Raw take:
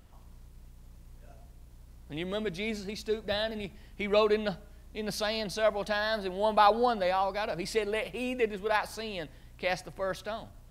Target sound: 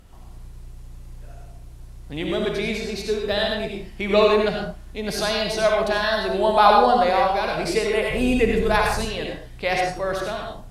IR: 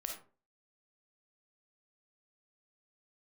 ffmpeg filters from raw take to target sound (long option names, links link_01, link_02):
-filter_complex "[0:a]asettb=1/sr,asplit=3[link_01][link_02][link_03];[link_01]atrim=end=8.104[link_04];[link_02]atrim=start=8.1:end=9.05,asetpts=PTS-STARTPTS,afade=type=in:duration=0.004:curve=qsin,afade=type=out:start_time=0.946:duration=0.004:curve=qsin,bass=frequency=250:gain=13,treble=frequency=4000:gain=4[link_05];[link_03]atrim=start=9.046[link_06];[link_04][link_05]acrossfade=duration=0.004:curve1=hsin:curve2=qsin[link_07];[link_07][link_06]acrossfade=duration=0.004:curve1=qsin:curve2=hsin[link_08];[1:a]atrim=start_sample=2205,afade=type=out:start_time=0.18:duration=0.01,atrim=end_sample=8379,asetrate=24696,aresample=44100[link_09];[link_08][link_09]afir=irnorm=-1:irlink=0,volume=6.5dB"